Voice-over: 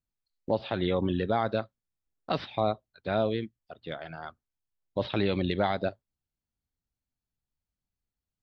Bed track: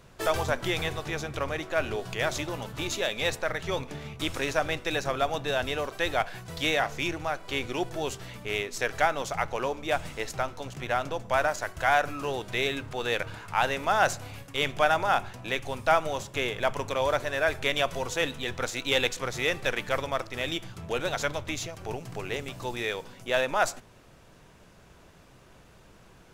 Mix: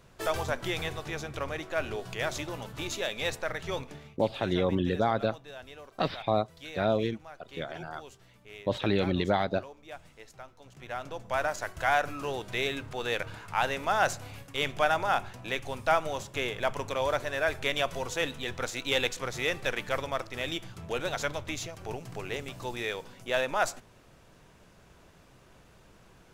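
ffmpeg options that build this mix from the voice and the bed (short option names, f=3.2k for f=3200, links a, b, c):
-filter_complex "[0:a]adelay=3700,volume=0.5dB[a];[1:a]volume=11dB,afade=t=out:st=3.79:d=0.39:silence=0.211349,afade=t=in:st=10.59:d=1.04:silence=0.188365[b];[a][b]amix=inputs=2:normalize=0"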